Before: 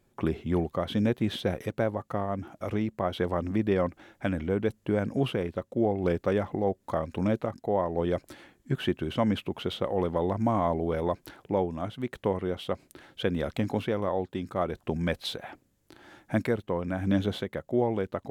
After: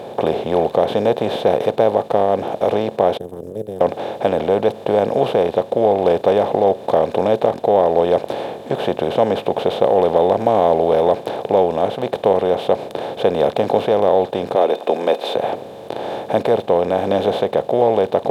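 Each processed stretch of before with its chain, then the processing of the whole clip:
3.17–3.81 s: inverse Chebyshev band-stop 330–4400 Hz, stop band 50 dB + power-law waveshaper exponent 3 + treble shelf 8.9 kHz +11.5 dB
14.55–15.36 s: steep high-pass 270 Hz + small resonant body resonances 2.5/3.6 kHz, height 16 dB, ringing for 85 ms
whole clip: spectral levelling over time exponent 0.4; high-pass 100 Hz; high-order bell 610 Hz +12 dB 1.3 oct; trim -2 dB

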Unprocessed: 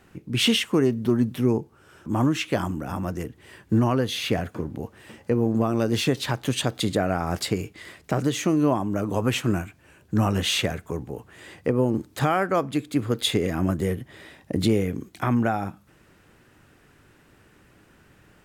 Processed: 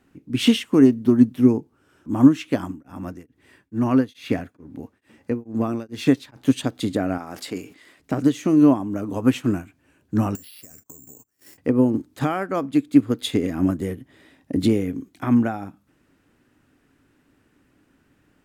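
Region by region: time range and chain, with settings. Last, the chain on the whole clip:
2.62–6.36 s: peaking EQ 2.1 kHz +3 dB 1.7 oct + band-stop 3 kHz, Q 17 + tremolo of two beating tones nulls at 2.3 Hz
7.18–8.00 s: high-pass 400 Hz 6 dB/octave + decay stretcher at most 96 dB/s
10.35–11.58 s: gate -45 dBFS, range -26 dB + careless resampling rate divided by 6×, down filtered, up zero stuff + compression 10:1, threshold -30 dBFS
whole clip: peaking EQ 270 Hz +11.5 dB 0.4 oct; upward expansion 1.5:1, over -31 dBFS; trim +2.5 dB

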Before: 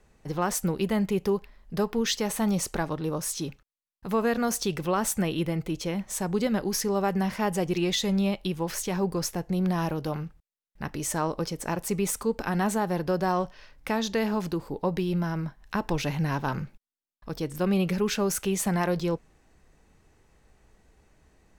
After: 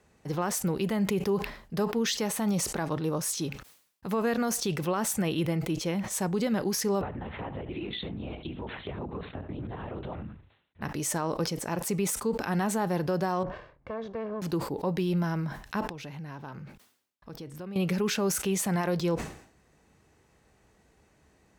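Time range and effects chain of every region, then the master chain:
7.01–10.82 s: LPC vocoder at 8 kHz whisper + delay 76 ms -18 dB + compression 12:1, threshold -31 dBFS
13.43–14.42 s: comb filter that takes the minimum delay 1.8 ms + Bessel low-pass 990 Hz + compression 2:1, threshold -36 dBFS
15.87–17.76 s: treble shelf 5 kHz -5.5 dB + compression 3:1, threshold -41 dBFS
whole clip: high-pass 75 Hz 12 dB/octave; peak limiter -19.5 dBFS; decay stretcher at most 100 dB/s

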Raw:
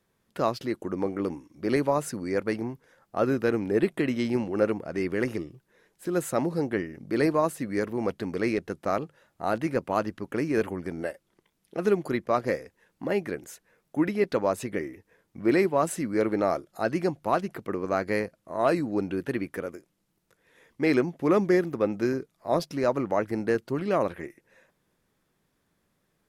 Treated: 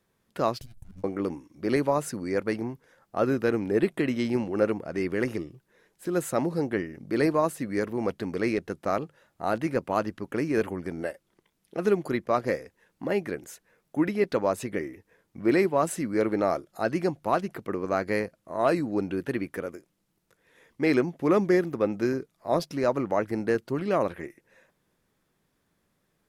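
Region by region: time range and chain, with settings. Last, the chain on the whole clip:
0.61–1.04 s: comb filter that takes the minimum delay 1.3 ms + FFT filter 120 Hz 0 dB, 610 Hz -29 dB, 10 kHz -2 dB + compressor with a negative ratio -46 dBFS
whole clip: none

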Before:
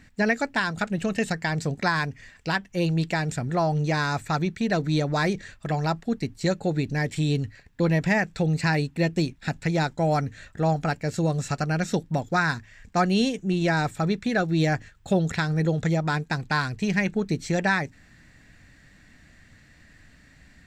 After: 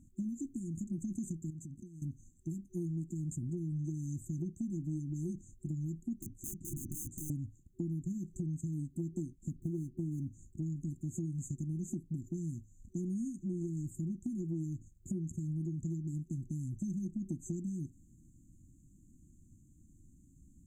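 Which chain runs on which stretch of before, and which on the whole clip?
1.50–2.02 s: peaking EQ 1.4 kHz -7.5 dB 0.5 oct + compression 12:1, threshold -36 dBFS
6.20–7.30 s: treble shelf 7.9 kHz -11.5 dB + integer overflow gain 26 dB
9.51–10.33 s: median filter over 25 samples + peaking EQ 760 Hz +10 dB 2.3 oct
whole clip: FFT band-reject 370–6100 Hz; compression, threshold -29 dBFS; trim -5.5 dB

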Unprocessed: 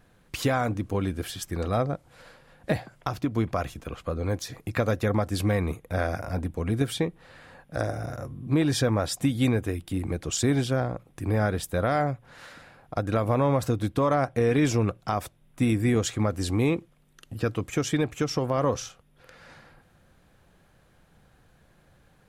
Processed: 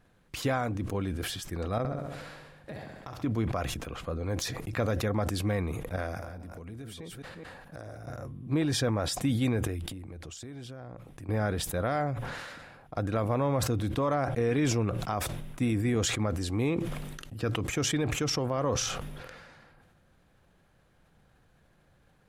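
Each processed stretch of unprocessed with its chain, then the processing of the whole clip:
1.78–3.23 s: compression, threshold -34 dBFS + flutter echo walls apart 11.5 m, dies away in 0.95 s
5.96–8.07 s: chunks repeated in reverse 211 ms, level -8 dB + treble shelf 8.3 kHz +5.5 dB + compression 5:1, threshold -36 dBFS
9.67–11.29 s: peaking EQ 82 Hz +4.5 dB 0.28 oct + compression 10:1, threshold -35 dBFS
whole clip: treble shelf 8 kHz -4 dB; decay stretcher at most 33 dB/s; trim -5 dB

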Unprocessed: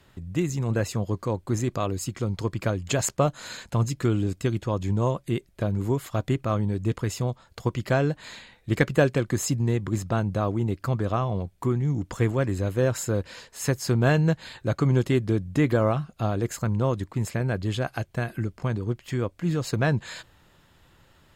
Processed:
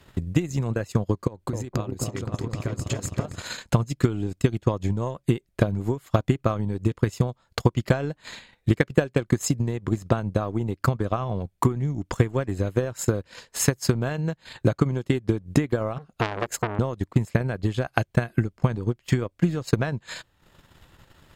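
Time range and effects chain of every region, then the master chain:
1.27–3.42 s: compression 10:1, threshold -34 dBFS + delay with an opening low-pass 260 ms, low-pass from 750 Hz, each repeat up 2 oct, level 0 dB
15.98–16.79 s: dynamic bell 540 Hz, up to +6 dB, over -42 dBFS, Q 1 + transformer saturation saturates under 2 kHz
whole clip: compression 8:1, threshold -27 dBFS; transient shaper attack +10 dB, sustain -12 dB; trim +3 dB

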